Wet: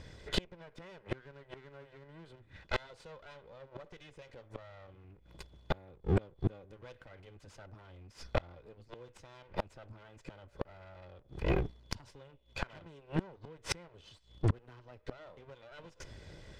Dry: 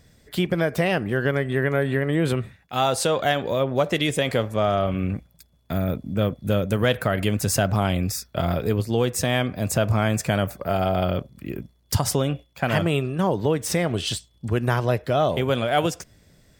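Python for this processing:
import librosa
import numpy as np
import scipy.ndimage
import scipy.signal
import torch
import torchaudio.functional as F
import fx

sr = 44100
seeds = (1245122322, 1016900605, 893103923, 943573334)

p1 = fx.lower_of_two(x, sr, delay_ms=2.0)
p2 = scipy.signal.sosfilt(scipy.signal.butter(2, 4600.0, 'lowpass', fs=sr, output='sos'), p1)
p3 = 10.0 ** (-22.5 / 20.0) * np.tanh(p2 / 10.0 ** (-22.5 / 20.0))
p4 = p2 + (p3 * librosa.db_to_amplitude(-4.0))
p5 = fx.gate_flip(p4, sr, shuts_db=-20.0, range_db=-32)
y = p5 * librosa.db_to_amplitude(1.5)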